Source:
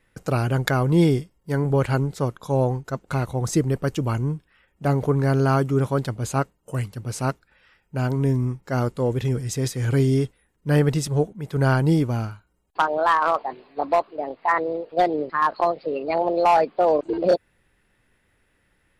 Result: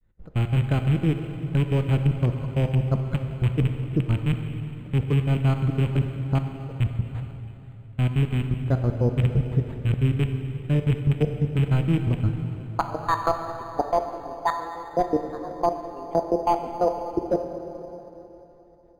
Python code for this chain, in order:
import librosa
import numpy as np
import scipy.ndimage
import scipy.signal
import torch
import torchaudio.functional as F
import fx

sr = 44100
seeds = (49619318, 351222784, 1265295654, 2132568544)

y = fx.rattle_buzz(x, sr, strikes_db=-23.0, level_db=-10.0)
y = fx.riaa(y, sr, side='playback')
y = fx.granulator(y, sr, seeds[0], grain_ms=135.0, per_s=5.9, spray_ms=18.0, spread_st=0)
y = fx.level_steps(y, sr, step_db=22)
y = fx.rev_plate(y, sr, seeds[1], rt60_s=3.5, hf_ratio=0.8, predelay_ms=0, drr_db=5.0)
y = np.interp(np.arange(len(y)), np.arange(len(y))[::8], y[::8])
y = F.gain(torch.from_numpy(y), 3.0).numpy()